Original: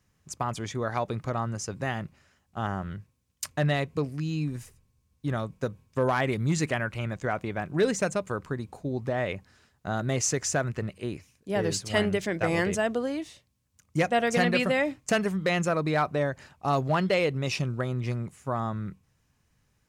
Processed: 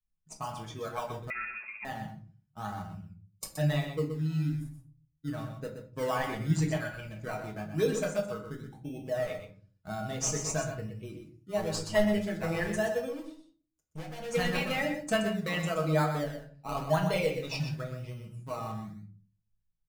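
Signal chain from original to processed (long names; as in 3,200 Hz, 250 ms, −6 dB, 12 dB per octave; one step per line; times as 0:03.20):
spectral dynamics exaggerated over time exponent 1.5
in parallel at −8 dB: sample-and-hold swept by an LFO 21×, swing 60% 0.98 Hz
on the sum: dynamic equaliser 230 Hz, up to −5 dB, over −38 dBFS, Q 0.79
0:13.08–0:14.30: tube saturation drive 38 dB, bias 0.35
0:16.23–0:16.77: amplitude modulation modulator 110 Hz, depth 85%
comb filter 6.3 ms, depth 49%
on a send: single-tap delay 124 ms −8 dB
on the sum: rectangular room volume 300 cubic metres, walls furnished, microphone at 1.5 metres
0:01.30–0:01.85: voice inversion scrambler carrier 2,600 Hz
level −5.5 dB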